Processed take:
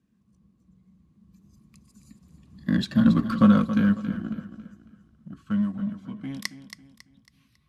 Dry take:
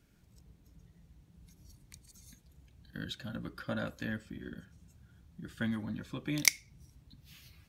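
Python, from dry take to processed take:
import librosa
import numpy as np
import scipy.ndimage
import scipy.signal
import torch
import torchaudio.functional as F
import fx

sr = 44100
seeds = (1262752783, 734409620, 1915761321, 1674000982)

p1 = fx.doppler_pass(x, sr, speed_mps=33, closest_m=13.0, pass_at_s=3.07)
p2 = scipy.signal.sosfilt(scipy.signal.butter(4, 41.0, 'highpass', fs=sr, output='sos'), p1)
p3 = fx.high_shelf(p2, sr, hz=9900.0, db=-6.5)
p4 = fx.small_body(p3, sr, hz=(210.0, 1100.0), ring_ms=40, db=16)
p5 = np.sign(p4) * np.maximum(np.abs(p4) - 10.0 ** (-44.0 / 20.0), 0.0)
p6 = p4 + F.gain(torch.from_numpy(p5), -4.5).numpy()
p7 = fx.brickwall_lowpass(p6, sr, high_hz=13000.0)
p8 = p7 + fx.echo_feedback(p7, sr, ms=275, feedback_pct=39, wet_db=-11.5, dry=0)
y = F.gain(torch.from_numpy(p8), 7.5).numpy()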